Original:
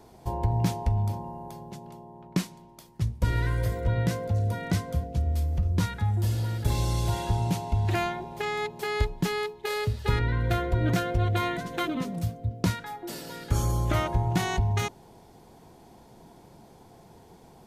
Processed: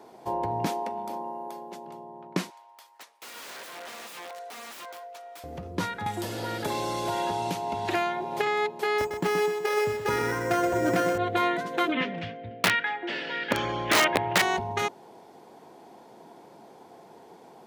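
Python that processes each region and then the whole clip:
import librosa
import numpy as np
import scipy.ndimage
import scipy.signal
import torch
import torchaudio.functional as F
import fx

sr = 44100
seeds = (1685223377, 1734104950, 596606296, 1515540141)

y = fx.chain(x, sr, fx.highpass(hz=210.0, slope=24),
    fx.high_shelf(hz=12000.0, db=6.0), at=(0.66, 1.86))
y = fx.chain(y, sr, fx.highpass(hz=750.0, slope=24),
    fx.overflow_wrap(gain_db=38.0), at=(2.5, 5.44))
y = fx.chain(y, sr, fx.low_shelf(hz=120.0, db=-6.5),
    fx.band_squash(depth_pct=100), at=(6.06, 8.47))
y = fx.chain(y, sr, fx.echo_feedback(ms=126, feedback_pct=40, wet_db=-7.0),
    fx.resample_bad(factor=6, down='filtered', up='hold'), at=(8.98, 11.18))
y = fx.chain(y, sr, fx.lowpass(hz=4800.0, slope=24),
    fx.band_shelf(hz=2300.0, db=13.0, octaves=1.3),
    fx.overflow_wrap(gain_db=15.0), at=(11.92, 14.42))
y = scipy.signal.sosfilt(scipy.signal.butter(2, 320.0, 'highpass', fs=sr, output='sos'), y)
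y = fx.high_shelf(y, sr, hz=3600.0, db=-9.5)
y = F.gain(torch.from_numpy(y), 5.5).numpy()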